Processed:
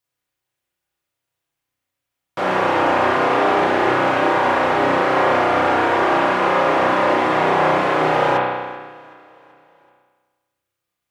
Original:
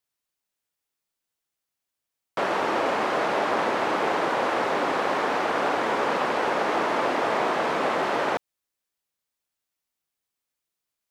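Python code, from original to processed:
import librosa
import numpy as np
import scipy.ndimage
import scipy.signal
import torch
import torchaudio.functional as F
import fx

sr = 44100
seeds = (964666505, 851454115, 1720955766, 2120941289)

y = fx.peak_eq(x, sr, hz=110.0, db=7.0, octaves=1.2)
y = fx.notch_comb(y, sr, f0_hz=220.0)
y = fx.echo_feedback(y, sr, ms=381, feedback_pct=57, wet_db=-23.5)
y = fx.rev_spring(y, sr, rt60_s=1.4, pass_ms=(32,), chirp_ms=75, drr_db=-5.0)
y = y * 10.0 ** (2.5 / 20.0)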